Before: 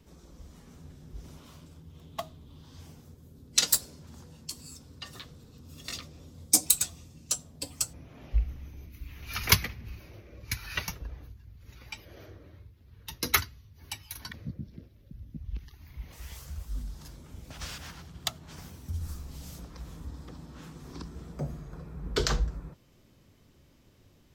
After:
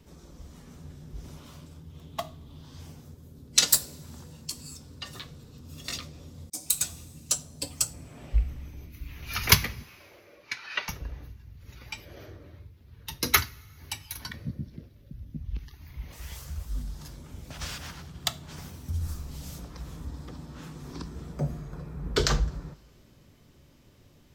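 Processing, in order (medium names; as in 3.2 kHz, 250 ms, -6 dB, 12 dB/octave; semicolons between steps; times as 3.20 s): 9.83–10.89 s: band-pass 470–4000 Hz; reverberation, pre-delay 3 ms, DRR 13 dB; 6.50–6.92 s: fade in; trim +3 dB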